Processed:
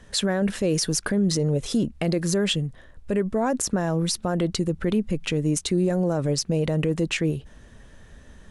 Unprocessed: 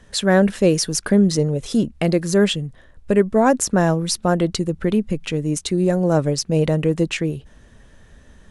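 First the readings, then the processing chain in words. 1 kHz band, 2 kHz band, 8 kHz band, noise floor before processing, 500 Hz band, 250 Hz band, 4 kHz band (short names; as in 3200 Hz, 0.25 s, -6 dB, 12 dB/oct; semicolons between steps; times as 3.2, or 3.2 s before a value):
-8.5 dB, -5.5 dB, -3.0 dB, -50 dBFS, -6.5 dB, -5.0 dB, -2.0 dB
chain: limiter -14.5 dBFS, peak gain reduction 11.5 dB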